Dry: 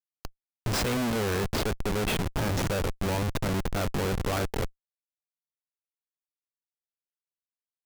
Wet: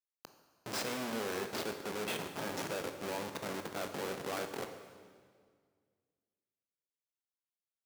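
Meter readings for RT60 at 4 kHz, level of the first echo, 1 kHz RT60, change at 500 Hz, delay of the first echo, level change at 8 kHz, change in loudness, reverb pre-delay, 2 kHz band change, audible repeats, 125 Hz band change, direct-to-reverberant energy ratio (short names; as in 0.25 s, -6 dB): 1.7 s, none, 1.8 s, -8.0 dB, none, -7.5 dB, -9.5 dB, 17 ms, -7.5 dB, none, -20.5 dB, 6.0 dB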